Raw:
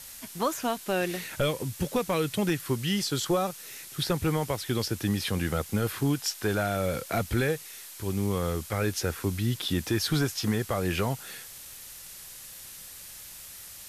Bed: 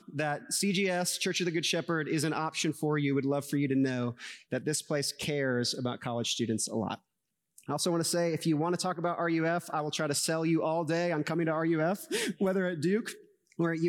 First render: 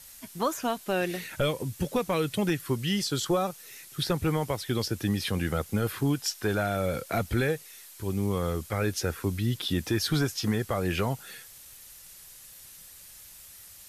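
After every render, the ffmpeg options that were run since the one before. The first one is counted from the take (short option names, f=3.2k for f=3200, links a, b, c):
-af "afftdn=nr=6:nf=-45"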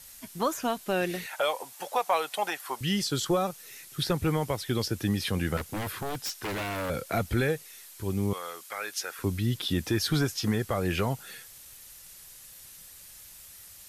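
-filter_complex "[0:a]asettb=1/sr,asplit=3[a][b][c];[a]atrim=end=1.264[d];[b]atrim=start=1.26:end=2.81,asetpts=PTS-STARTPTS,afade=t=in:d=0.004:c=qsin,afade=t=out:st=1.546:d=0.004:c=qsin,highpass=f=780:t=q:w=3.6[e];[c]atrim=start=2.806[f];[d][e]acrossfade=d=0.004:c1=hsin:c2=qsin[g];[g][f]acrossfade=d=0.004:c1=qsin:c2=hsin,asettb=1/sr,asplit=3[h][i][j];[h]atrim=end=5.574[k];[i]atrim=start=5.57:end=6.9,asetpts=PTS-STARTPTS,afade=t=in:d=0.004:c=qsin,afade=t=out:st=1.326:d=0.004:c=qsin,aeval=exprs='0.0447*(abs(mod(val(0)/0.0447+3,4)-2)-1)':c=same[l];[j]atrim=start=6.896[m];[k][l]acrossfade=d=0.004:c1=hsin:c2=qsin[n];[n][m]acrossfade=d=0.004:c1=qsin:c2=hsin,asettb=1/sr,asplit=3[o][p][q];[o]atrim=end=8.334[r];[p]atrim=start=8.33:end=9.19,asetpts=PTS-STARTPTS,afade=t=in:d=0.004:c=qsin,afade=t=out:st=0.856:d=0.004:c=qsin,highpass=880[s];[q]atrim=start=9.186[t];[r][s]acrossfade=d=0.004:c1=hsin:c2=qsin[u];[u][t]acrossfade=d=0.004:c1=qsin:c2=hsin"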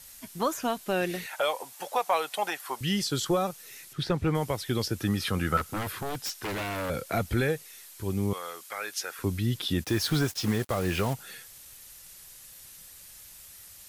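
-filter_complex "[0:a]asettb=1/sr,asplit=3[a][b][c];[a]atrim=end=3.934[d];[b]atrim=start=3.93:end=4.35,asetpts=PTS-STARTPTS,afade=t=in:d=0.004:c=qsin,afade=t=out:st=0.416:d=0.004:c=qsin,aemphasis=mode=reproduction:type=50fm[e];[c]atrim=start=4.346[f];[d][e]acrossfade=d=0.004:c1=hsin:c2=qsin[g];[g][f]acrossfade=d=0.004:c1=qsin:c2=hsin,asettb=1/sr,asplit=3[h][i][j];[h]atrim=end=5.014[k];[i]atrim=start=5.01:end=5.83,asetpts=PTS-STARTPTS,afade=t=in:d=0.004:c=qsin,afade=t=out:st=0.816:d=0.004:c=qsin,equalizer=f=1.3k:w=5.9:g=13.5[l];[j]atrim=start=5.826[m];[k][l]acrossfade=d=0.004:c1=hsin:c2=qsin[n];[n][m]acrossfade=d=0.004:c1=qsin:c2=hsin,asplit=3[o][p][q];[o]afade=t=out:st=9.83:d=0.02[r];[p]acrusher=bits=5:mix=0:aa=0.5,afade=t=in:st=9.83:d=0.02,afade=t=out:st=11.13:d=0.02[s];[q]afade=t=in:st=11.13:d=0.02[t];[r][s][t]amix=inputs=3:normalize=0"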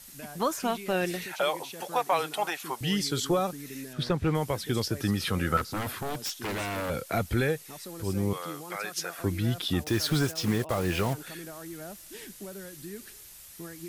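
-filter_complex "[1:a]volume=-13.5dB[a];[0:a][a]amix=inputs=2:normalize=0"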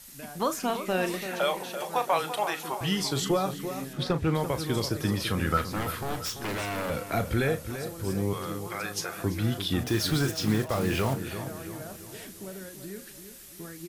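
-filter_complex "[0:a]asplit=2[a][b];[b]adelay=37,volume=-11dB[c];[a][c]amix=inputs=2:normalize=0,asplit=2[d][e];[e]adelay=338,lowpass=f=2.6k:p=1,volume=-9.5dB,asplit=2[f][g];[g]adelay=338,lowpass=f=2.6k:p=1,volume=0.49,asplit=2[h][i];[i]adelay=338,lowpass=f=2.6k:p=1,volume=0.49,asplit=2[j][k];[k]adelay=338,lowpass=f=2.6k:p=1,volume=0.49,asplit=2[l][m];[m]adelay=338,lowpass=f=2.6k:p=1,volume=0.49[n];[d][f][h][j][l][n]amix=inputs=6:normalize=0"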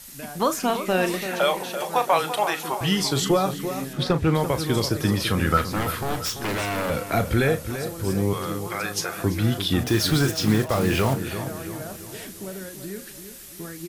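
-af "volume=5.5dB"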